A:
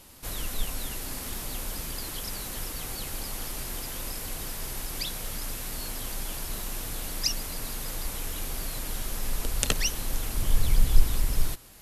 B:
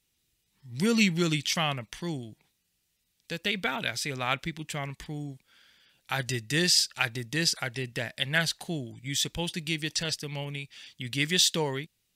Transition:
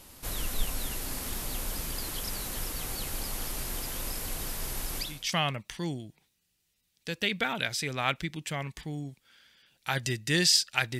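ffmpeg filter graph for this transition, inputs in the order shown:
-filter_complex "[0:a]apad=whole_dur=10.99,atrim=end=10.99,atrim=end=5.35,asetpts=PTS-STARTPTS[a];[1:a]atrim=start=1.2:end=7.22,asetpts=PTS-STARTPTS[b];[a][b]acrossfade=d=0.38:c1=qua:c2=qua"

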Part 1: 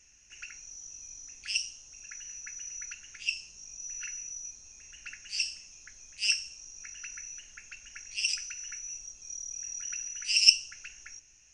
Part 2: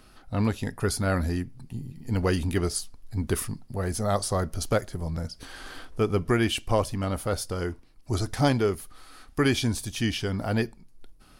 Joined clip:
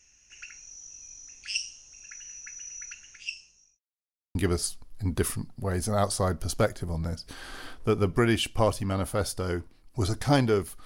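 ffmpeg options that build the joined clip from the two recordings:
-filter_complex "[0:a]apad=whole_dur=10.85,atrim=end=10.85,asplit=2[a][b];[a]atrim=end=3.79,asetpts=PTS-STARTPTS,afade=t=out:st=2.98:d=0.81[c];[b]atrim=start=3.79:end=4.35,asetpts=PTS-STARTPTS,volume=0[d];[1:a]atrim=start=2.47:end=8.97,asetpts=PTS-STARTPTS,afade=t=in:d=0.004:c=hsin[e];[c][d][e]concat=n=3:v=0:a=1"

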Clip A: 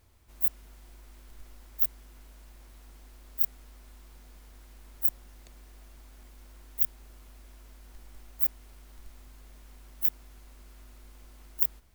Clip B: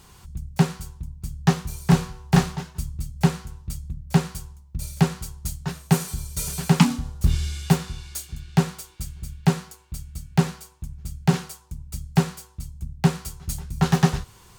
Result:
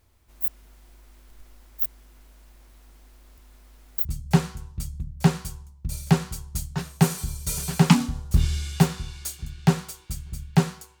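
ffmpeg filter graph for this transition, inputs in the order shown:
-filter_complex "[0:a]apad=whole_dur=11,atrim=end=11,asplit=2[a][b];[a]atrim=end=3.382[c];[b]atrim=start=3.378:end=4.052,asetpts=PTS-STARTPTS,areverse[d];[1:a]atrim=start=2.948:end=9.9[e];[c][d]acrossfade=d=0.004:c1=hsin:c2=hsin[f];[f][e]acrossfade=d=0.004:c1=hsin:c2=hsin"

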